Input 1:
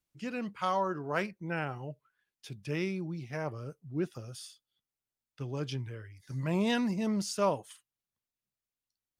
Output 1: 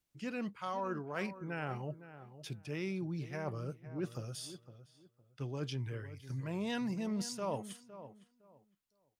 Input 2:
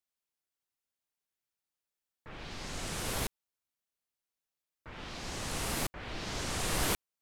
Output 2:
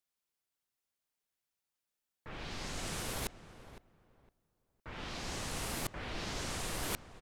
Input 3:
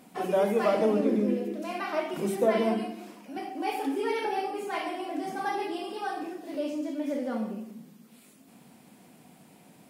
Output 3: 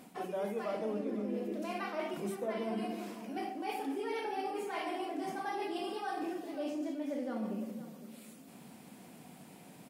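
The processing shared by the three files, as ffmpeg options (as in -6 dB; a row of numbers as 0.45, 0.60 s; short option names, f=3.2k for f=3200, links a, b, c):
-filter_complex "[0:a]areverse,acompressor=threshold=-36dB:ratio=5,areverse,asplit=2[a][b];[b]adelay=510,lowpass=f=1.7k:p=1,volume=-13dB,asplit=2[c][d];[d]adelay=510,lowpass=f=1.7k:p=1,volume=0.23,asplit=2[e][f];[f]adelay=510,lowpass=f=1.7k:p=1,volume=0.23[g];[a][c][e][g]amix=inputs=4:normalize=0,volume=1dB"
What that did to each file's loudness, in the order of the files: -6.0, -4.0, -8.5 LU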